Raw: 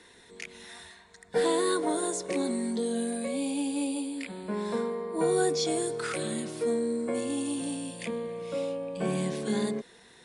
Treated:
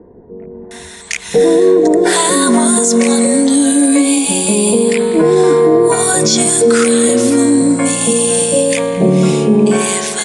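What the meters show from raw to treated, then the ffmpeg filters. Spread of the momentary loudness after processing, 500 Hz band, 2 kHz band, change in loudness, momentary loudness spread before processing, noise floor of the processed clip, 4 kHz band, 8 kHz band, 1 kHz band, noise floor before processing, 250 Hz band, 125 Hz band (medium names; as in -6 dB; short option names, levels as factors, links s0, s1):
3 LU, +18.5 dB, +18.5 dB, +19.5 dB, 11 LU, -33 dBFS, +18.5 dB, +24.5 dB, +17.0 dB, -56 dBFS, +19.5 dB, +20.0 dB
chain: -filter_complex "[0:a]acrossover=split=680[s0][s1];[s1]adelay=710[s2];[s0][s2]amix=inputs=2:normalize=0,aexciter=amount=2.3:drive=5.5:freq=5900,asplit=2[s3][s4];[s4]adelay=197,lowpass=f=2000:p=1,volume=0.2,asplit=2[s5][s6];[s6]adelay=197,lowpass=f=2000:p=1,volume=0.54,asplit=2[s7][s8];[s8]adelay=197,lowpass=f=2000:p=1,volume=0.54,asplit=2[s9][s10];[s10]adelay=197,lowpass=f=2000:p=1,volume=0.54,asplit=2[s11][s12];[s12]adelay=197,lowpass=f=2000:p=1,volume=0.54[s13];[s5][s7][s9][s11][s13]amix=inputs=5:normalize=0[s14];[s3][s14]amix=inputs=2:normalize=0,alimiter=level_in=13.3:limit=0.891:release=50:level=0:latency=1,volume=0.891" -ar 22050 -c:a aac -b:a 96k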